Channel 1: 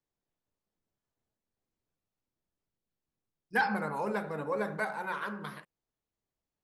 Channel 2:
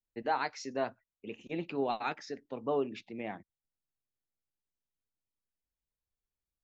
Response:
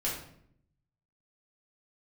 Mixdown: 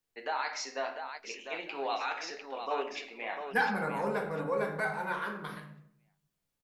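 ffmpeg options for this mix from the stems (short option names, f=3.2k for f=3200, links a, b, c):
-filter_complex "[0:a]volume=-4.5dB,asplit=2[a][b];[b]volume=-4dB[c];[1:a]highpass=860,alimiter=level_in=6.5dB:limit=-24dB:level=0:latency=1:release=25,volume=-6.5dB,volume=2.5dB,asplit=3[d][e][f];[e]volume=-4.5dB[g];[f]volume=-3.5dB[h];[2:a]atrim=start_sample=2205[i];[c][g]amix=inputs=2:normalize=0[j];[j][i]afir=irnorm=-1:irlink=0[k];[h]aecho=0:1:700|1400|2100|2800:1|0.27|0.0729|0.0197[l];[a][d][k][l]amix=inputs=4:normalize=0"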